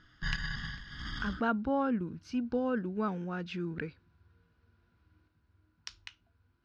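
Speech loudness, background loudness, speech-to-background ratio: -34.5 LUFS, -39.5 LUFS, 5.0 dB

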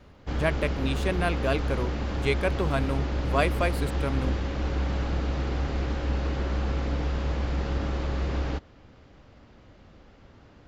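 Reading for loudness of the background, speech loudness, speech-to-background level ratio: -30.0 LUFS, -30.0 LUFS, 0.0 dB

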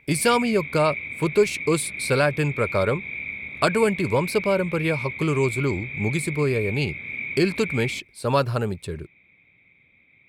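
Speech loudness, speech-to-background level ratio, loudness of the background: -24.0 LUFS, 7.0 dB, -31.0 LUFS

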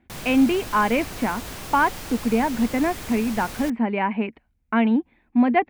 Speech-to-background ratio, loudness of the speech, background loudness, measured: 12.0 dB, -23.0 LUFS, -35.0 LUFS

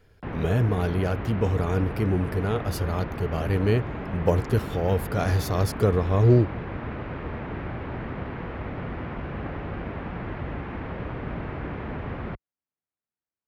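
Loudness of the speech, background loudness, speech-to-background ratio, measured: -25.0 LUFS, -34.0 LUFS, 9.0 dB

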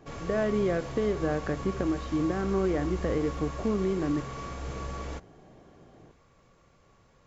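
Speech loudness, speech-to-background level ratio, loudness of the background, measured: -29.5 LUFS, 9.0 dB, -38.5 LUFS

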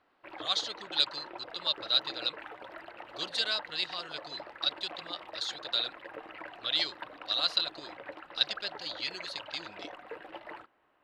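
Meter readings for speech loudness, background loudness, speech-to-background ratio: -32.0 LUFS, -46.0 LUFS, 14.0 dB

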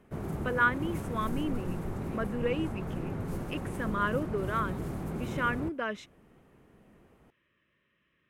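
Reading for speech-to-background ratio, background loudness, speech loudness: 4.0 dB, -37.0 LUFS, -33.0 LUFS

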